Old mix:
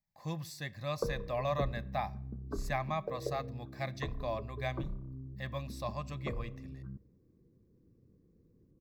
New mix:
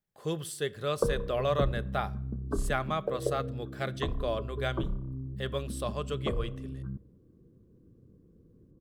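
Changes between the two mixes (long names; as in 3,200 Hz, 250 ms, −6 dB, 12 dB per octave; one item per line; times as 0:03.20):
speech: remove phaser with its sweep stopped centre 2,100 Hz, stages 8
background +7.0 dB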